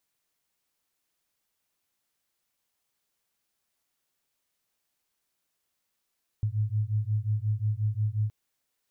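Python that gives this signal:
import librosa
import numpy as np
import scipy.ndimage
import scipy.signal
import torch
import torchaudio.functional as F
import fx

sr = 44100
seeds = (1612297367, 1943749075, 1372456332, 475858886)

y = fx.two_tone_beats(sr, length_s=1.87, hz=104.0, beat_hz=5.6, level_db=-28.0)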